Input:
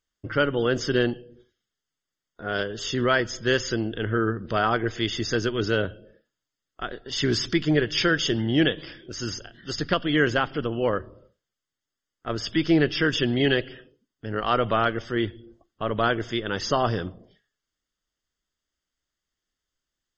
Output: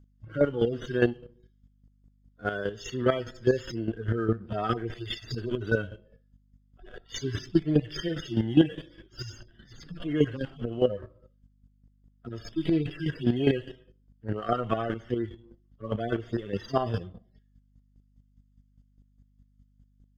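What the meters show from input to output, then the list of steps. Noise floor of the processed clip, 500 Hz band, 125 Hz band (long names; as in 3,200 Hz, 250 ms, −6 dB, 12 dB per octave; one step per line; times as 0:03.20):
−65 dBFS, −3.5 dB, −2.0 dB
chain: harmonic-percussive split with one part muted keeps harmonic
mains hum 50 Hz, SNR 26 dB
in parallel at −5 dB: slack as between gear wheels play −41.5 dBFS
on the sum: square-wave tremolo 4.9 Hz, depth 65%, duty 20%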